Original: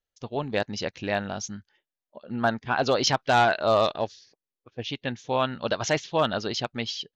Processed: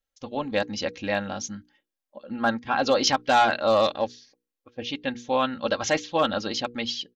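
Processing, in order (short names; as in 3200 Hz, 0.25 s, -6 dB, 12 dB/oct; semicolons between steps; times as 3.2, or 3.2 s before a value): notches 60/120/180/240/300/360/420/480 Hz; comb 3.7 ms, depth 61%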